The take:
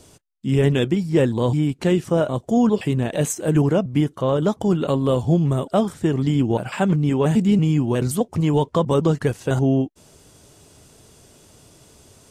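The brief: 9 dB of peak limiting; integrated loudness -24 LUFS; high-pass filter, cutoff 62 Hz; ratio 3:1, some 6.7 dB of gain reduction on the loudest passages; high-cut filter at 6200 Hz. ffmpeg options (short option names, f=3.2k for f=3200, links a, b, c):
-af "highpass=62,lowpass=6.2k,acompressor=threshold=-22dB:ratio=3,volume=5.5dB,alimiter=limit=-14.5dB:level=0:latency=1"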